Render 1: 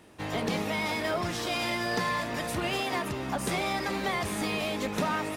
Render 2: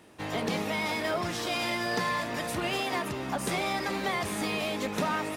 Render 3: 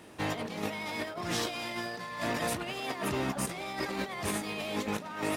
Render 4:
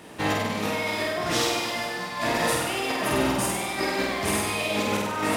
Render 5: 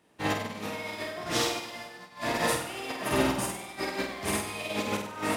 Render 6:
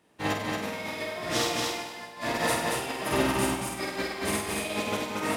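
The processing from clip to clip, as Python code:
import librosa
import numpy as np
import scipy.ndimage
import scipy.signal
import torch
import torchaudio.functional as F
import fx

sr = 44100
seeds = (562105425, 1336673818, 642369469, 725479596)

y1 = fx.low_shelf(x, sr, hz=66.0, db=-9.5)
y2 = fx.over_compress(y1, sr, threshold_db=-34.0, ratio=-0.5)
y3 = fx.hum_notches(y2, sr, base_hz=50, count=7)
y3 = fx.room_flutter(y3, sr, wall_m=8.4, rt60_s=1.2)
y3 = y3 * librosa.db_to_amplitude(6.0)
y4 = fx.upward_expand(y3, sr, threshold_db=-35.0, expansion=2.5)
y5 = fx.echo_feedback(y4, sr, ms=229, feedback_pct=15, wet_db=-3.0)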